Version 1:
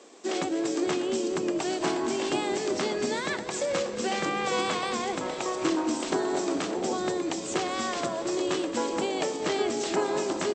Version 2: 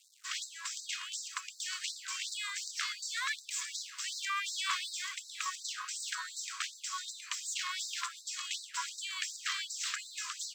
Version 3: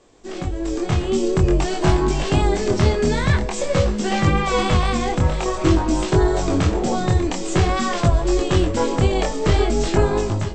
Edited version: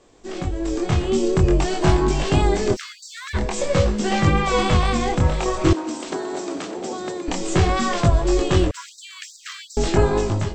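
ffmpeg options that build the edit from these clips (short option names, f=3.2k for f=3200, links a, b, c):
-filter_complex "[1:a]asplit=2[a][b];[2:a]asplit=4[c][d][e][f];[c]atrim=end=2.77[g];[a]atrim=start=2.73:end=3.37[h];[d]atrim=start=3.33:end=5.732[i];[0:a]atrim=start=5.728:end=7.282[j];[e]atrim=start=7.278:end=8.712[k];[b]atrim=start=8.708:end=9.772[l];[f]atrim=start=9.768[m];[g][h]acrossfade=d=0.04:c1=tri:c2=tri[n];[n][i]acrossfade=d=0.04:c1=tri:c2=tri[o];[o][j]acrossfade=d=0.004:c1=hsin:c2=hsin[p];[p][k]acrossfade=d=0.004:c1=hsin:c2=hsin[q];[q][l]acrossfade=d=0.004:c1=hsin:c2=hsin[r];[r][m]acrossfade=d=0.004:c1=hsin:c2=hsin"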